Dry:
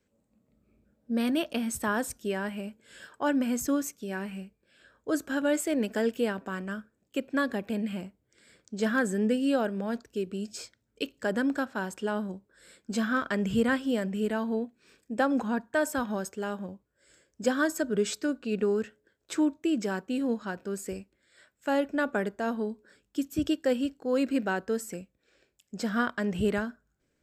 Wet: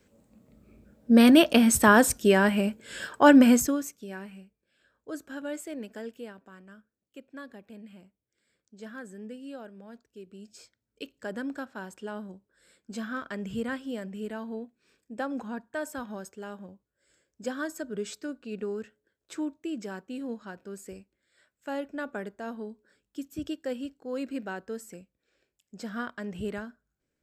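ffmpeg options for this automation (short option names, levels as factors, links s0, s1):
-af "volume=9.44,afade=t=out:st=3.49:d=0.23:silence=0.251189,afade=t=out:st=3.72:d=0.7:silence=0.398107,afade=t=out:st=5.59:d=0.87:silence=0.473151,afade=t=in:st=10.1:d=1.03:silence=0.375837"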